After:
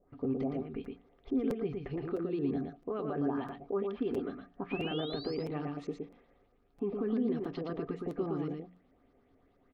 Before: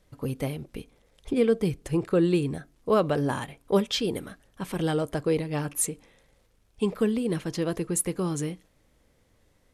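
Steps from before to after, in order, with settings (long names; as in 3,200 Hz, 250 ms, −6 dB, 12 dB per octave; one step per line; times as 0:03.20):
auto-filter low-pass saw up 4.6 Hz 510–6,400 Hz
downward compressor, threshold −24 dBFS, peak gain reduction 10.5 dB
brickwall limiter −25 dBFS, peak gain reduction 9.5 dB
mains-hum notches 60/120/180 Hz
hollow resonant body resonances 270/390/710/1,200 Hz, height 14 dB, ringing for 65 ms
sound drawn into the spectrogram rise, 0:04.70–0:05.35, 2,400–5,300 Hz −32 dBFS
high-frequency loss of the air 250 metres
single-tap delay 116 ms −4 dB
regular buffer underruns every 0.66 s, samples 256, repeat, from 0:00.84
level −8.5 dB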